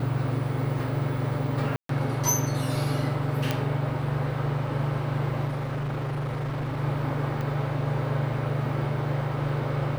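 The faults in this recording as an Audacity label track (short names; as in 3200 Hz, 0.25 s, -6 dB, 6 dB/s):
1.760000	1.890000	gap 0.133 s
3.510000	3.510000	pop -11 dBFS
5.470000	6.800000	clipped -26.5 dBFS
7.410000	7.410000	pop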